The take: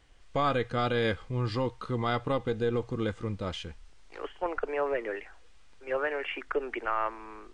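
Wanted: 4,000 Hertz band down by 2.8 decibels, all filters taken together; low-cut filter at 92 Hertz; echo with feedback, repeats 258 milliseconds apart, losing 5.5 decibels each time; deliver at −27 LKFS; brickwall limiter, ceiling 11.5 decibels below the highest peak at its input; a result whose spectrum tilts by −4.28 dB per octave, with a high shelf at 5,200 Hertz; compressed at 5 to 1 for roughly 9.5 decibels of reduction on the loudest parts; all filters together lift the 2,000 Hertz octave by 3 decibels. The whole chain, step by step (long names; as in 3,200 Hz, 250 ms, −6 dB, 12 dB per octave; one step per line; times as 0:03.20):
high-pass filter 92 Hz
parametric band 2,000 Hz +5.5 dB
parametric band 4,000 Hz −4 dB
high-shelf EQ 5,200 Hz −6 dB
downward compressor 5 to 1, threshold −34 dBFS
brickwall limiter −31.5 dBFS
repeating echo 258 ms, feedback 53%, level −5.5 dB
level +14.5 dB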